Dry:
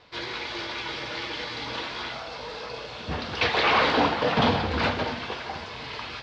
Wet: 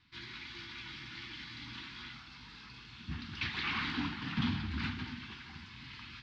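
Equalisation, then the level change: Chebyshev band-stop 250–1200 Hz, order 2; peaking EQ 1.1 kHz -8.5 dB 1.4 oct; treble shelf 4.3 kHz -9.5 dB; -6.5 dB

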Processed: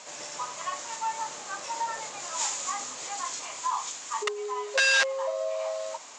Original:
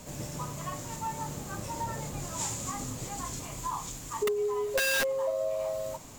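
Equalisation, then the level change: high-pass 830 Hz 12 dB/octave; steep low-pass 7.2 kHz 36 dB/octave; +7.0 dB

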